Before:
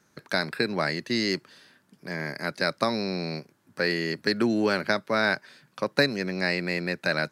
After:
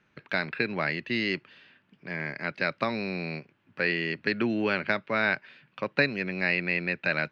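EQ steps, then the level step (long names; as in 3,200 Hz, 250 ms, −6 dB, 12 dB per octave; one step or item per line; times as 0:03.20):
low-pass with resonance 2,700 Hz, resonance Q 3.5
low-shelf EQ 97 Hz +8 dB
−4.5 dB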